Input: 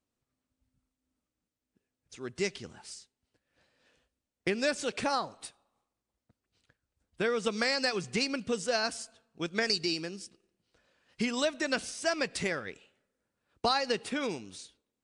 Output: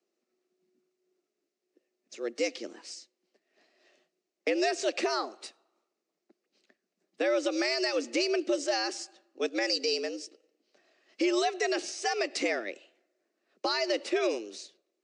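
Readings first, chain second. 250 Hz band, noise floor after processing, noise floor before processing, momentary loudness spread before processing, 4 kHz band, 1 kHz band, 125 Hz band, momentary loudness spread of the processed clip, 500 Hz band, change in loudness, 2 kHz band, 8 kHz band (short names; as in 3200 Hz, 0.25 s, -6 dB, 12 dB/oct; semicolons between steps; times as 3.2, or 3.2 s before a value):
+2.0 dB, -85 dBFS, under -85 dBFS, 17 LU, +0.5 dB, +0.5 dB, under -25 dB, 16 LU, +3.5 dB, +1.5 dB, -0.5 dB, +1.0 dB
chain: speaker cabinet 160–6700 Hz, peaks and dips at 250 Hz +5 dB, 830 Hz -10 dB, 1400 Hz -6 dB, 3200 Hz -6 dB; frequency shift +110 Hz; limiter -24 dBFS, peak gain reduction 7 dB; gain +5 dB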